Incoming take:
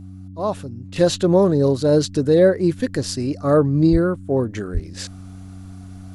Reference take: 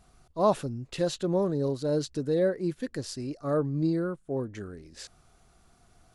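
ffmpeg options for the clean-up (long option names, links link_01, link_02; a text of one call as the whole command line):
ffmpeg -i in.wav -filter_complex "[0:a]bandreject=frequency=94:width_type=h:width=4,bandreject=frequency=188:width_type=h:width=4,bandreject=frequency=282:width_type=h:width=4,asplit=3[link_01][link_02][link_03];[link_01]afade=type=out:start_time=3.91:duration=0.02[link_04];[link_02]highpass=frequency=140:width=0.5412,highpass=frequency=140:width=1.3066,afade=type=in:start_time=3.91:duration=0.02,afade=type=out:start_time=4.03:duration=0.02[link_05];[link_03]afade=type=in:start_time=4.03:duration=0.02[link_06];[link_04][link_05][link_06]amix=inputs=3:normalize=0,asplit=3[link_07][link_08][link_09];[link_07]afade=type=out:start_time=4.73:duration=0.02[link_10];[link_08]highpass=frequency=140:width=0.5412,highpass=frequency=140:width=1.3066,afade=type=in:start_time=4.73:duration=0.02,afade=type=out:start_time=4.85:duration=0.02[link_11];[link_09]afade=type=in:start_time=4.85:duration=0.02[link_12];[link_10][link_11][link_12]amix=inputs=3:normalize=0,asetnsamples=nb_out_samples=441:pad=0,asendcmd='0.96 volume volume -11.5dB',volume=0dB" out.wav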